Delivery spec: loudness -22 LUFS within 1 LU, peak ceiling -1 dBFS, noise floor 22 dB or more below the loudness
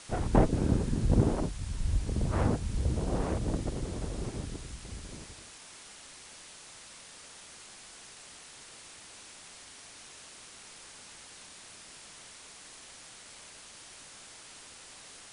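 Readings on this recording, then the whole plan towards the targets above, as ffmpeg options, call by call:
noise floor -51 dBFS; noise floor target -54 dBFS; loudness -31.5 LUFS; peak -12.0 dBFS; loudness target -22.0 LUFS
-> -af "afftdn=nr=6:nf=-51"
-af "volume=9.5dB"

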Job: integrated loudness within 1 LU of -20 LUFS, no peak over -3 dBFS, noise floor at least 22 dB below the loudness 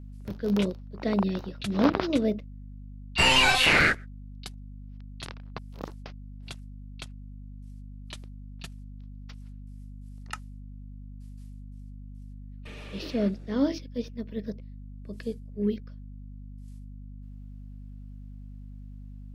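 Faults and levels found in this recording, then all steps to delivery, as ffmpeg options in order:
hum 50 Hz; harmonics up to 250 Hz; hum level -40 dBFS; loudness -26.0 LUFS; peak -7.5 dBFS; loudness target -20.0 LUFS
-> -af "bandreject=f=50:t=h:w=4,bandreject=f=100:t=h:w=4,bandreject=f=150:t=h:w=4,bandreject=f=200:t=h:w=4,bandreject=f=250:t=h:w=4"
-af "volume=6dB,alimiter=limit=-3dB:level=0:latency=1"

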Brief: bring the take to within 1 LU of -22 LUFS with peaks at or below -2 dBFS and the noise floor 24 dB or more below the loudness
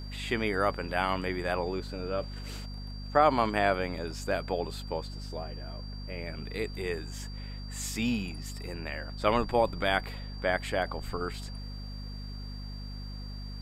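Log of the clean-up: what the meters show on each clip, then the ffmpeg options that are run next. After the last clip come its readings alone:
hum 50 Hz; harmonics up to 250 Hz; hum level -37 dBFS; steady tone 4700 Hz; tone level -48 dBFS; loudness -32.5 LUFS; peak -8.5 dBFS; loudness target -22.0 LUFS
-> -af "bandreject=f=50:t=h:w=6,bandreject=f=100:t=h:w=6,bandreject=f=150:t=h:w=6,bandreject=f=200:t=h:w=6,bandreject=f=250:t=h:w=6"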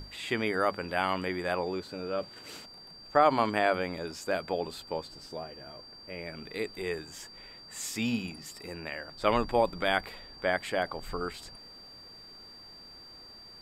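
hum none; steady tone 4700 Hz; tone level -48 dBFS
-> -af "bandreject=f=4.7k:w=30"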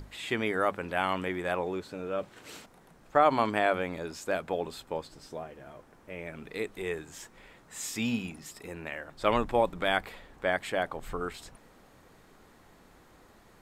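steady tone none; loudness -31.5 LUFS; peak -8.5 dBFS; loudness target -22.0 LUFS
-> -af "volume=9.5dB,alimiter=limit=-2dB:level=0:latency=1"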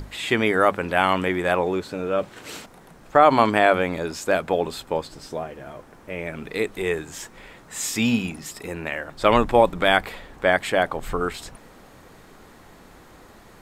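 loudness -22.0 LUFS; peak -2.0 dBFS; noise floor -49 dBFS

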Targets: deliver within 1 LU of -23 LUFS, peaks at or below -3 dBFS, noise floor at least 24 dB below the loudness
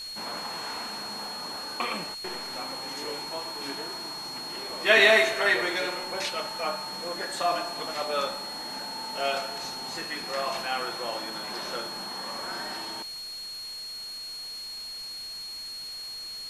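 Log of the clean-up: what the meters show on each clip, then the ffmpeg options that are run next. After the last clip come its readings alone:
steady tone 4300 Hz; tone level -36 dBFS; noise floor -39 dBFS; noise floor target -53 dBFS; loudness -29.0 LUFS; peak -5.5 dBFS; loudness target -23.0 LUFS
-> -af "bandreject=f=4.3k:w=30"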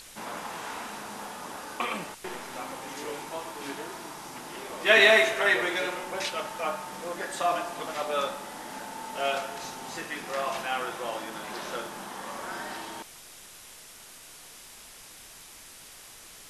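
steady tone none; noise floor -49 dBFS; noise floor target -54 dBFS
-> -af "afftdn=nr=6:nf=-49"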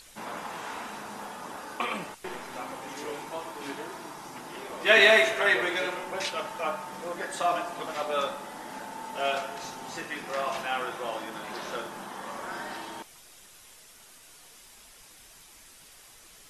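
noise floor -53 dBFS; noise floor target -54 dBFS
-> -af "afftdn=nr=6:nf=-53"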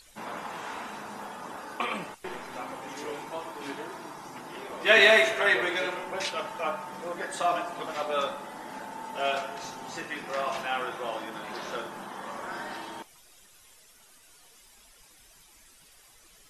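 noise floor -57 dBFS; loudness -29.5 LUFS; peak -5.5 dBFS; loudness target -23.0 LUFS
-> -af "volume=6.5dB,alimiter=limit=-3dB:level=0:latency=1"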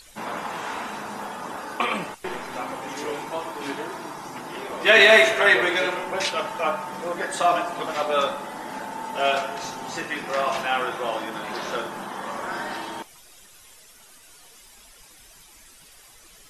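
loudness -23.5 LUFS; peak -3.0 dBFS; noise floor -51 dBFS

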